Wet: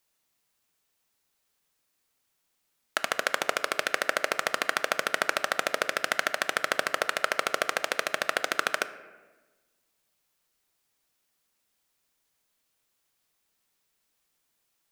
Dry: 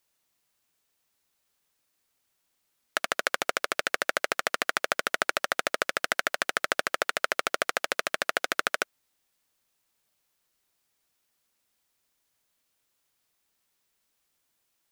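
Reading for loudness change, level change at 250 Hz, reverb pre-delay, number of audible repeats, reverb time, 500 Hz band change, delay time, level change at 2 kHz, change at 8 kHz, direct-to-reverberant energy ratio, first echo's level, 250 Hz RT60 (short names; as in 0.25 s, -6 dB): +0.5 dB, +0.5 dB, 4 ms, none, 1.2 s, +0.5 dB, none, 0.0 dB, 0.0 dB, 11.5 dB, none, 1.6 s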